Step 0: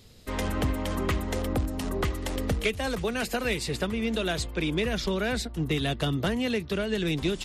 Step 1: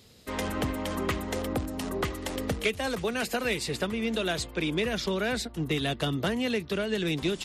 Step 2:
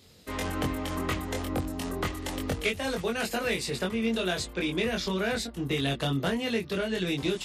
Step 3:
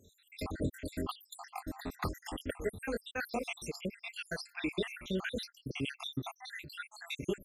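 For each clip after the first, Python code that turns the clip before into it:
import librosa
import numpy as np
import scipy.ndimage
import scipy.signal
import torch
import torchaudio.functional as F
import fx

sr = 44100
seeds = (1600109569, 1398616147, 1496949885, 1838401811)

y1 = fx.highpass(x, sr, hz=140.0, slope=6)
y2 = fx.doubler(y1, sr, ms=22.0, db=-2.5)
y2 = y2 * librosa.db_to_amplitude(-2.0)
y3 = fx.spec_dropout(y2, sr, seeds[0], share_pct=76)
y3 = y3 * librosa.db_to_amplitude(-3.0)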